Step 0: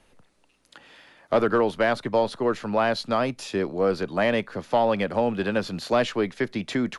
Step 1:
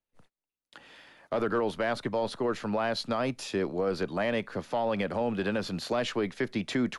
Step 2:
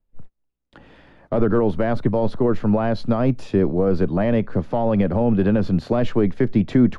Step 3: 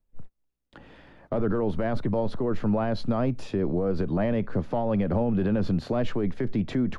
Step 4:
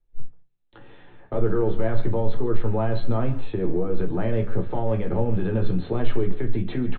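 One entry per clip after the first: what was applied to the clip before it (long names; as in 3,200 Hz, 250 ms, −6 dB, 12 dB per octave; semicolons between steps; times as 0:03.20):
noise gate −55 dBFS, range −31 dB; brickwall limiter −17.5 dBFS, peak gain reduction 8 dB; level −2 dB
spectral tilt −4.5 dB per octave; level +4 dB
brickwall limiter −15.5 dBFS, peak gain reduction 10 dB; level −2 dB
linear-phase brick-wall low-pass 4,300 Hz; far-end echo of a speakerphone 140 ms, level −14 dB; convolution reverb RT60 0.30 s, pre-delay 3 ms, DRR 2 dB; level −2.5 dB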